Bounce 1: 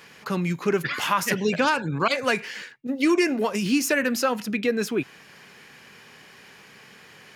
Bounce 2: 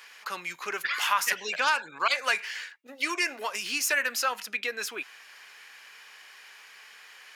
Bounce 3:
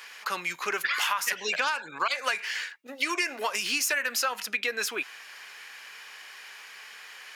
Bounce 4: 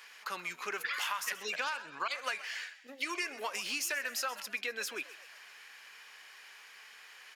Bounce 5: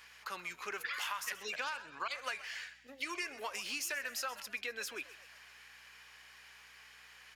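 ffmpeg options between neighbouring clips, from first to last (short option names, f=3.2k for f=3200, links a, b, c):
-af "highpass=1k"
-af "acompressor=threshold=-28dB:ratio=10,volume=4.5dB"
-filter_complex "[0:a]asplit=5[a][b][c][d][e];[b]adelay=129,afreqshift=69,volume=-16dB[f];[c]adelay=258,afreqshift=138,volume=-22.6dB[g];[d]adelay=387,afreqshift=207,volume=-29.1dB[h];[e]adelay=516,afreqshift=276,volume=-35.7dB[i];[a][f][g][h][i]amix=inputs=5:normalize=0,volume=-8dB"
-af "aeval=exprs='val(0)+0.000251*(sin(2*PI*60*n/s)+sin(2*PI*2*60*n/s)/2+sin(2*PI*3*60*n/s)/3+sin(2*PI*4*60*n/s)/4+sin(2*PI*5*60*n/s)/5)':c=same,volume=-3.5dB"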